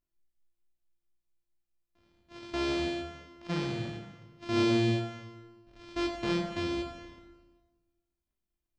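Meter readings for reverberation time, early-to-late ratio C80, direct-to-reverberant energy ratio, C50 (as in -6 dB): 1.3 s, 7.0 dB, 2.0 dB, 5.0 dB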